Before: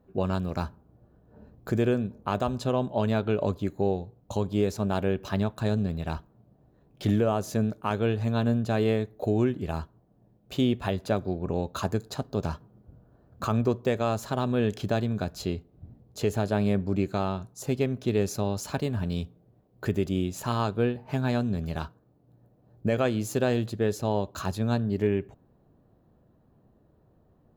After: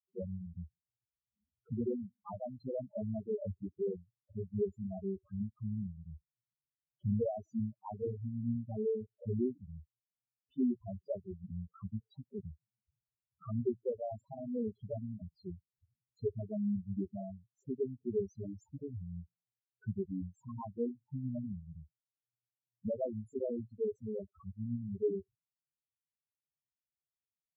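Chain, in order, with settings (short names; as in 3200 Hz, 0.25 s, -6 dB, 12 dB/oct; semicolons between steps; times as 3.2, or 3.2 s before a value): power-law curve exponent 2; loudest bins only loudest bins 2; gain +1.5 dB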